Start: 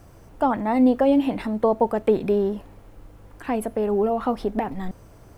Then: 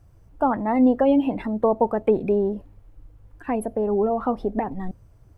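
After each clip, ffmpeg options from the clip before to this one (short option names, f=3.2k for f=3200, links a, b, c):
-af "afftdn=nr=14:nf=-36"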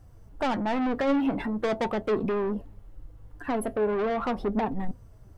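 -af "bandreject=f=2.4k:w=13,asoftclip=type=tanh:threshold=-25.5dB,flanger=delay=3.8:depth=3.8:regen=66:speed=0.41:shape=triangular,volume=6.5dB"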